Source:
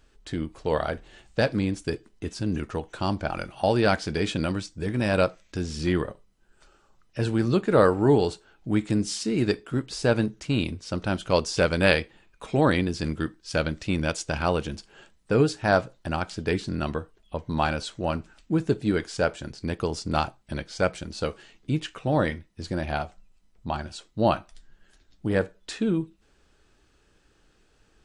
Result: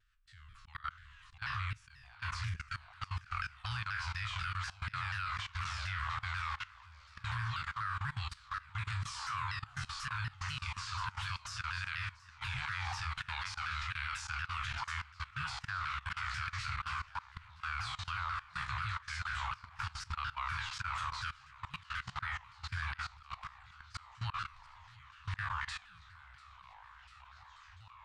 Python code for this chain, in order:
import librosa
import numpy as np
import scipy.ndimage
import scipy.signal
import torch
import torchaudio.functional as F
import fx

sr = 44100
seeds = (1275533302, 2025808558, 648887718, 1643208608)

y = fx.spec_trails(x, sr, decay_s=0.42)
y = scipy.signal.sosfilt(scipy.signal.cheby1(4, 1.0, [110.0, 1200.0], 'bandstop', fs=sr, output='sos'), y)
y = fx.low_shelf(y, sr, hz=200.0, db=-8.5)
y = fx.echo_pitch(y, sr, ms=602, semitones=-2, count=3, db_per_echo=-6.0)
y = fx.auto_swell(y, sr, attack_ms=117.0)
y = fx.echo_thinned(y, sr, ms=692, feedback_pct=70, hz=160.0, wet_db=-11.5)
y = fx.level_steps(y, sr, step_db=19)
y = fx.lowpass(y, sr, hz=1600.0, slope=6)
y = fx.vibrato_shape(y, sr, shape='saw_down', rate_hz=4.1, depth_cents=160.0)
y = y * 10.0 ** (3.0 / 20.0)